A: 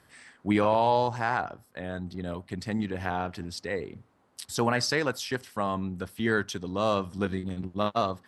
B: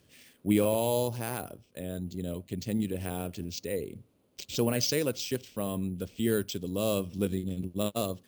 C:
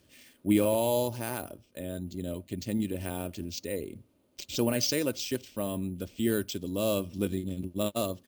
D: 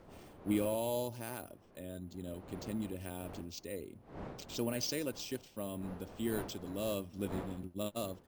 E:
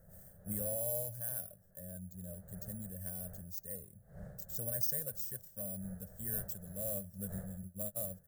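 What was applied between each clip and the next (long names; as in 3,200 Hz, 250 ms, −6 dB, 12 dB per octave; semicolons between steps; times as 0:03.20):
low-pass filter 9,800 Hz 24 dB per octave; decimation without filtering 4×; flat-topped bell 1,200 Hz −13 dB
comb filter 3.3 ms, depth 34%
wind on the microphone 560 Hz −43 dBFS; level −8.5 dB
drawn EQ curve 190 Hz 0 dB, 280 Hz −29 dB, 590 Hz −3 dB, 1,000 Hz −24 dB, 1,700 Hz −3 dB, 2,400 Hz −28 dB, 5,200 Hz −11 dB, 8,600 Hz +5 dB, 13,000 Hz +13 dB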